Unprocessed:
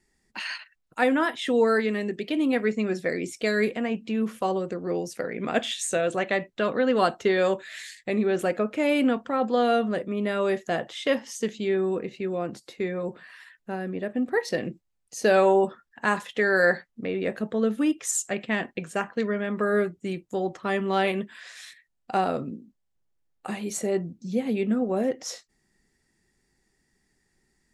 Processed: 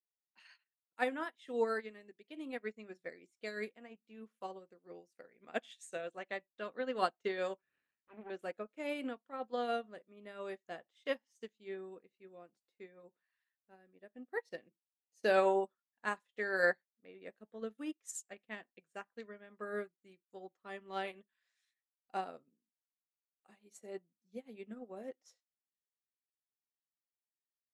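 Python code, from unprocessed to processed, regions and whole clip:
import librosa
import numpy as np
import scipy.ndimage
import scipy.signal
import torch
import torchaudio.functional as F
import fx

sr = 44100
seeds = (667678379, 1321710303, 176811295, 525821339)

y = fx.chain(x, sr, fx.lower_of_two(delay_ms=0.72),
    fx.lowpass(hz=2500.0, slope=24), at=(7.58, 8.3))
y = fx.highpass(y, sr, hz=330.0, slope=6)
y = fx.upward_expand(y, sr, threshold_db=-40.0, expansion=2.5)
y = y * 10.0 ** (-6.5 / 20.0)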